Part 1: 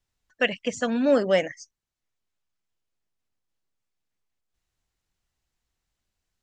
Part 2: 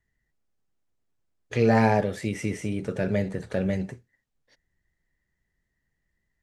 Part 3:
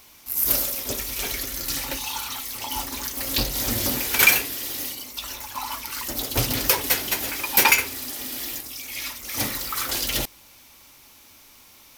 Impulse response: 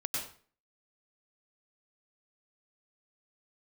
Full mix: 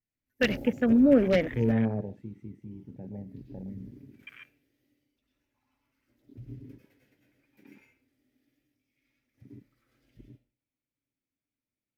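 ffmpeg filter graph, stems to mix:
-filter_complex "[0:a]highshelf=frequency=3500:gain=6.5,aeval=exprs='(mod(3.35*val(0)+1,2)-1)/3.35':channel_layout=same,adynamicequalizer=threshold=0.0126:dfrequency=1800:dqfactor=0.7:tfrequency=1800:tqfactor=0.7:attack=5:release=100:ratio=0.375:range=2.5:mode=cutabove:tftype=highshelf,volume=-3.5dB,asplit=2[link_01][link_02];[1:a]volume=-12dB,afade=type=out:start_time=1.74:duration=0.57:silence=0.334965,asplit=2[link_03][link_04];[link_04]volume=-17.5dB[link_05];[2:a]highshelf=frequency=2600:gain=-9.5,volume=-7.5dB,asplit=2[link_06][link_07];[link_07]volume=-19.5dB[link_08];[link_02]apad=whole_len=528275[link_09];[link_06][link_09]sidechaingate=range=-33dB:threshold=-54dB:ratio=16:detection=peak[link_10];[3:a]atrim=start_sample=2205[link_11];[link_05][link_08]amix=inputs=2:normalize=0[link_12];[link_12][link_11]afir=irnorm=-1:irlink=0[link_13];[link_01][link_03][link_10][link_13]amix=inputs=4:normalize=0,equalizer=frequency=125:width_type=o:width=1:gain=8,equalizer=frequency=250:width_type=o:width=1:gain=7,equalizer=frequency=500:width_type=o:width=1:gain=3,equalizer=frequency=1000:width_type=o:width=1:gain=-12,equalizer=frequency=2000:width_type=o:width=1:gain=8,afwtdn=0.0158,highshelf=frequency=2300:gain=-9"

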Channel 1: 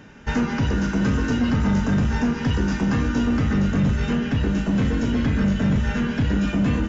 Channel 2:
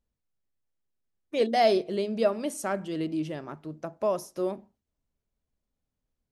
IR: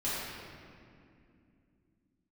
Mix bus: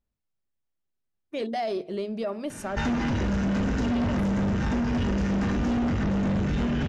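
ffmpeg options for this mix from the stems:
-filter_complex "[0:a]adelay=2500,volume=0dB,asplit=2[link_01][link_02];[link_02]volume=-6.5dB[link_03];[1:a]highshelf=frequency=5400:gain=-7,bandreject=frequency=490:width=12,alimiter=limit=-20dB:level=0:latency=1:release=28,volume=-0.5dB[link_04];[2:a]atrim=start_sample=2205[link_05];[link_03][link_05]afir=irnorm=-1:irlink=0[link_06];[link_01][link_04][link_06]amix=inputs=3:normalize=0,asoftclip=type=tanh:threshold=-18dB,acompressor=threshold=-24dB:ratio=6"

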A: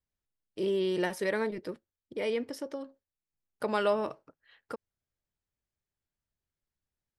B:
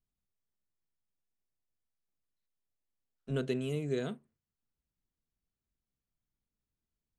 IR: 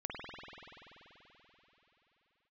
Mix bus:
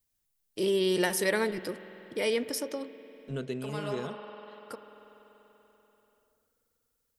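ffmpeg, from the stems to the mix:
-filter_complex "[0:a]crystalizer=i=3:c=0,volume=1dB,asplit=2[link_01][link_02];[link_02]volume=-14.5dB[link_03];[1:a]volume=-2dB,asplit=2[link_04][link_05];[link_05]apad=whole_len=316662[link_06];[link_01][link_06]sidechaincompress=threshold=-53dB:ratio=8:attack=43:release=748[link_07];[2:a]atrim=start_sample=2205[link_08];[link_03][link_08]afir=irnorm=-1:irlink=0[link_09];[link_07][link_04][link_09]amix=inputs=3:normalize=0"

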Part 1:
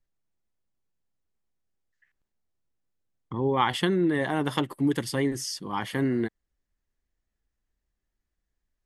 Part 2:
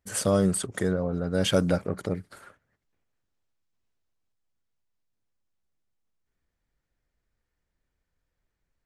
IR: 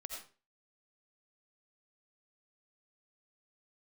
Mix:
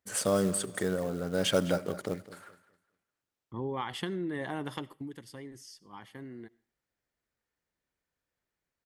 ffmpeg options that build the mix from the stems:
-filter_complex "[0:a]agate=range=-33dB:threshold=-31dB:ratio=3:detection=peak,acompressor=threshold=-25dB:ratio=6,adelay=200,volume=-6.5dB,afade=type=out:start_time=4.59:duration=0.6:silence=0.316228,asplit=2[link_01][link_02];[link_02]volume=-15.5dB[link_03];[1:a]highpass=frequency=240:poles=1,acrusher=bits=5:mode=log:mix=0:aa=0.000001,volume=-3dB,asplit=3[link_04][link_05][link_06];[link_05]volume=-15dB[link_07];[link_06]volume=-16dB[link_08];[2:a]atrim=start_sample=2205[link_09];[link_03][link_07]amix=inputs=2:normalize=0[link_10];[link_10][link_09]afir=irnorm=-1:irlink=0[link_11];[link_08]aecho=0:1:207|414|621|828:1|0.27|0.0729|0.0197[link_12];[link_01][link_04][link_11][link_12]amix=inputs=4:normalize=0"

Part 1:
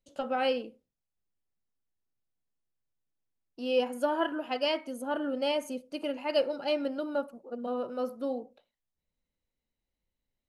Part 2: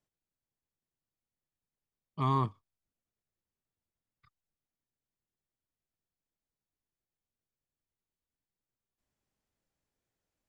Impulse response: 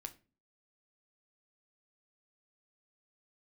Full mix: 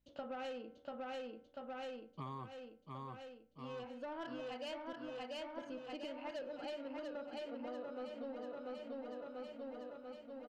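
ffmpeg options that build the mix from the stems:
-filter_complex "[0:a]lowpass=frequency=4500:width=0.5412,lowpass=frequency=4500:width=1.3066,bandreject=frequency=95.55:width_type=h:width=4,bandreject=frequency=191.1:width_type=h:width=4,bandreject=frequency=286.65:width_type=h:width=4,bandreject=frequency=382.2:width_type=h:width=4,bandreject=frequency=477.75:width_type=h:width=4,bandreject=frequency=573.3:width_type=h:width=4,bandreject=frequency=668.85:width_type=h:width=4,bandreject=frequency=764.4:width_type=h:width=4,bandreject=frequency=859.95:width_type=h:width=4,bandreject=frequency=955.5:width_type=h:width=4,bandreject=frequency=1051.05:width_type=h:width=4,bandreject=frequency=1146.6:width_type=h:width=4,bandreject=frequency=1242.15:width_type=h:width=4,bandreject=frequency=1337.7:width_type=h:width=4,bandreject=frequency=1433.25:width_type=h:width=4,bandreject=frequency=1528.8:width_type=h:width=4,bandreject=frequency=1624.35:width_type=h:width=4,bandreject=frequency=1719.9:width_type=h:width=4,bandreject=frequency=1815.45:width_type=h:width=4,bandreject=frequency=1911:width_type=h:width=4,bandreject=frequency=2006.55:width_type=h:width=4,bandreject=frequency=2102.1:width_type=h:width=4,bandreject=frequency=2197.65:width_type=h:width=4,asoftclip=type=tanh:threshold=-27dB,volume=-2.5dB,asplit=3[link_01][link_02][link_03];[link_01]atrim=end=4.93,asetpts=PTS-STARTPTS,afade=type=out:start_time=4.926:duration=0.004:curve=hsin[link_04];[link_02]atrim=start=4.93:end=5.58,asetpts=PTS-STARTPTS,volume=0[link_05];[link_03]atrim=start=5.58,asetpts=PTS-STARTPTS,afade=type=in:duration=0.004:curve=hsin[link_06];[link_04][link_05][link_06]concat=n=3:v=0:a=1,asplit=2[link_07][link_08];[link_08]volume=-4.5dB[link_09];[1:a]highpass=130,aeval=exprs='val(0)+0.000158*(sin(2*PI*60*n/s)+sin(2*PI*2*60*n/s)/2+sin(2*PI*3*60*n/s)/3+sin(2*PI*4*60*n/s)/4+sin(2*PI*5*60*n/s)/5)':channel_layout=same,volume=-7dB,asplit=3[link_10][link_11][link_12];[link_11]volume=-9.5dB[link_13];[link_12]apad=whole_len=462199[link_14];[link_07][link_14]sidechaincompress=threshold=-56dB:ratio=8:attack=16:release=1420[link_15];[link_09][link_13]amix=inputs=2:normalize=0,aecho=0:1:690|1380|2070|2760|3450|4140|4830|5520|6210:1|0.59|0.348|0.205|0.121|0.0715|0.0422|0.0249|0.0147[link_16];[link_15][link_10][link_16]amix=inputs=3:normalize=0,acompressor=threshold=-43dB:ratio=6"

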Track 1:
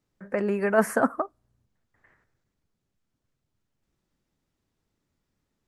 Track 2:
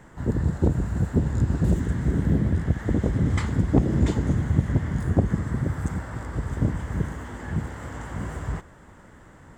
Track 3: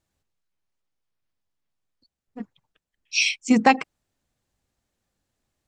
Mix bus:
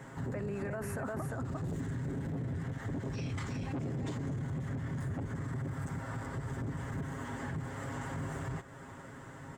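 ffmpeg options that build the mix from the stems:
ffmpeg -i stem1.wav -i stem2.wav -i stem3.wav -filter_complex "[0:a]volume=-8.5dB,asplit=2[link_01][link_02];[link_02]volume=-5.5dB[link_03];[1:a]aecho=1:1:7.4:0.69,asoftclip=type=tanh:threshold=-19.5dB,volume=0dB[link_04];[2:a]alimiter=limit=-11.5dB:level=0:latency=1,volume=-17.5dB,asplit=2[link_05][link_06];[link_06]volume=-13.5dB[link_07];[link_04][link_05]amix=inputs=2:normalize=0,highpass=68,acompressor=threshold=-39dB:ratio=2,volume=0dB[link_08];[link_03][link_07]amix=inputs=2:normalize=0,aecho=0:1:351:1[link_09];[link_01][link_08][link_09]amix=inputs=3:normalize=0,alimiter=level_in=6dB:limit=-24dB:level=0:latency=1:release=19,volume=-6dB" out.wav

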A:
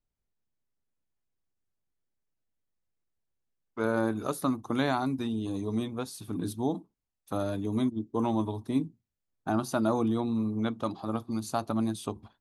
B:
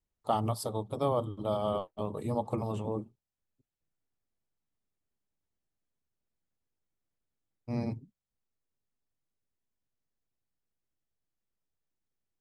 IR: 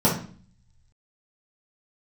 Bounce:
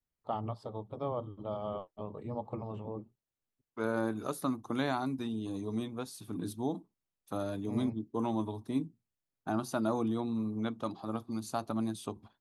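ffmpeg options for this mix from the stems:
-filter_complex "[0:a]highpass=85,volume=-4.5dB[link_01];[1:a]lowpass=2700,volume=-6.5dB[link_02];[link_01][link_02]amix=inputs=2:normalize=0"

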